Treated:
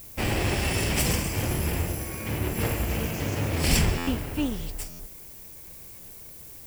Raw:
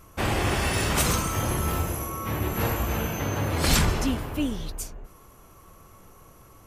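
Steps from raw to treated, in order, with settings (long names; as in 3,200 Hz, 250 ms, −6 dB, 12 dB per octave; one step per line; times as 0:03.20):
lower of the sound and its delayed copy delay 0.38 ms
background noise violet −45 dBFS
buffer that repeats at 0:03.97/0:04.89, samples 512, times 8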